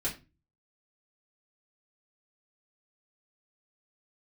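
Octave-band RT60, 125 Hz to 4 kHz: 0.55, 0.40, 0.30, 0.25, 0.25, 0.25 seconds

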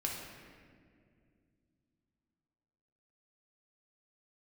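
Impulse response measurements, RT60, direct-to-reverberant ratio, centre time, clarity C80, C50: 2.2 s, −2.0 dB, 79 ms, 3.5 dB, 1.5 dB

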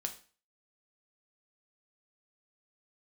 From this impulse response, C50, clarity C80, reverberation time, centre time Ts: 12.5 dB, 17.0 dB, 0.40 s, 9 ms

